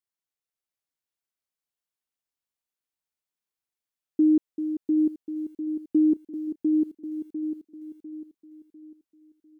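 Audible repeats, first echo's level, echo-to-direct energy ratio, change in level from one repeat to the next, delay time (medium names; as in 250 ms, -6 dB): 4, -3.5 dB, -3.0 dB, -8.5 dB, 699 ms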